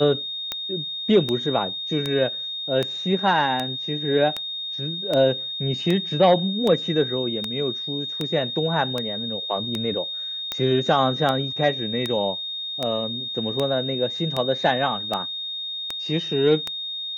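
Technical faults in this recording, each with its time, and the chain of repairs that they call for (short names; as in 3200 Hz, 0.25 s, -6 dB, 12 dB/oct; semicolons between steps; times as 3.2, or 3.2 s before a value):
tick 78 rpm -11 dBFS
tone 3700 Hz -28 dBFS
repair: de-click; notch 3700 Hz, Q 30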